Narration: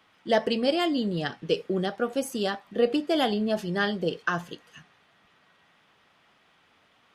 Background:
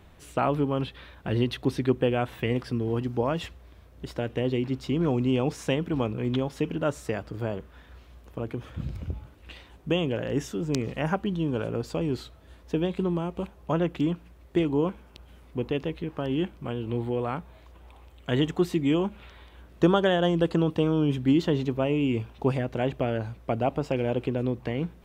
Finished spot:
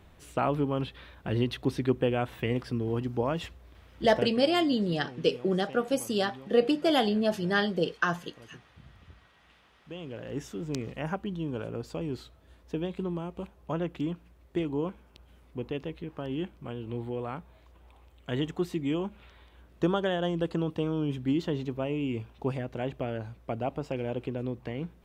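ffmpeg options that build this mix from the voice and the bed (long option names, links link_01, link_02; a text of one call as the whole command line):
ffmpeg -i stem1.wav -i stem2.wav -filter_complex "[0:a]adelay=3750,volume=0dB[link_01];[1:a]volume=11.5dB,afade=type=out:start_time=4.19:duration=0.22:silence=0.133352,afade=type=in:start_time=9.86:duration=0.66:silence=0.199526[link_02];[link_01][link_02]amix=inputs=2:normalize=0" out.wav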